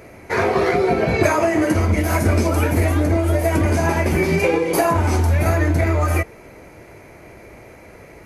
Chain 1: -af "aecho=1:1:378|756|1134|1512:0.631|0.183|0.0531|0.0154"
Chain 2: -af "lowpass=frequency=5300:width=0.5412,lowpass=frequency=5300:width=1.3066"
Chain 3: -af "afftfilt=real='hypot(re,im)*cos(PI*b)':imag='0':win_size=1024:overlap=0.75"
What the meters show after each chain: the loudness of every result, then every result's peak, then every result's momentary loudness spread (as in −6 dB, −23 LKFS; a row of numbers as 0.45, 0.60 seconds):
−17.0, −18.5, −23.0 LKFS; −3.0, −4.5, −3.0 dBFS; 9, 2, 6 LU